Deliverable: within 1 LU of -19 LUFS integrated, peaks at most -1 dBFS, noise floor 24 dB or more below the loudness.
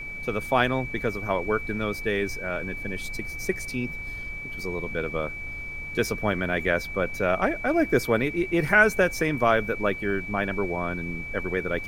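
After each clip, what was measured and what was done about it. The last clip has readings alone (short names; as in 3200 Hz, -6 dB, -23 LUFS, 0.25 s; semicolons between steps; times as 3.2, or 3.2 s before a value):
steady tone 2300 Hz; tone level -34 dBFS; noise floor -36 dBFS; noise floor target -50 dBFS; loudness -26.0 LUFS; peak -5.0 dBFS; loudness target -19.0 LUFS
-> notch 2300 Hz, Q 30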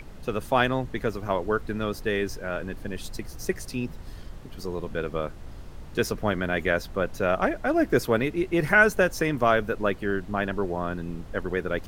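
steady tone none; noise floor -42 dBFS; noise floor target -51 dBFS
-> noise print and reduce 9 dB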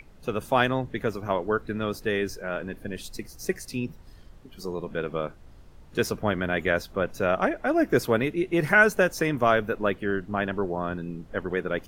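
noise floor -50 dBFS; noise floor target -51 dBFS
-> noise print and reduce 6 dB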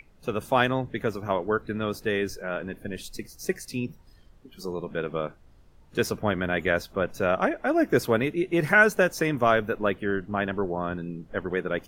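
noise floor -55 dBFS; loudness -26.5 LUFS; peak -5.5 dBFS; loudness target -19.0 LUFS
-> gain +7.5 dB; limiter -1 dBFS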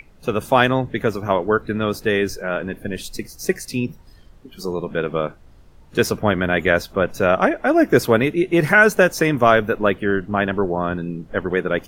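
loudness -19.5 LUFS; peak -1.0 dBFS; noise floor -47 dBFS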